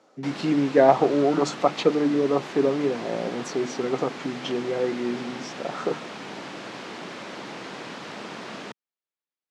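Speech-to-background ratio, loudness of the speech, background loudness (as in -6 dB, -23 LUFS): 12.5 dB, -24.5 LUFS, -37.0 LUFS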